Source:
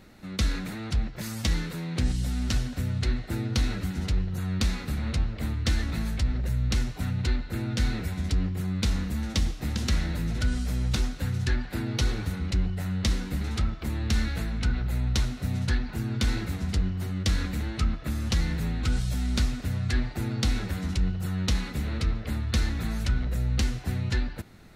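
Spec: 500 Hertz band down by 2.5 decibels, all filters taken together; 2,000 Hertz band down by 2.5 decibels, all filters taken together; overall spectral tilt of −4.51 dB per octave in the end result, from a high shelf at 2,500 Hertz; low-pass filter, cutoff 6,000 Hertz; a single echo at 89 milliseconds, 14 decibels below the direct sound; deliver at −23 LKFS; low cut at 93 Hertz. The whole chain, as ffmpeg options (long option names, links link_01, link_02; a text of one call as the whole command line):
ffmpeg -i in.wav -af "highpass=93,lowpass=6000,equalizer=frequency=500:width_type=o:gain=-3.5,equalizer=frequency=2000:width_type=o:gain=-6.5,highshelf=frequency=2500:gain=7.5,aecho=1:1:89:0.2,volume=8.5dB" out.wav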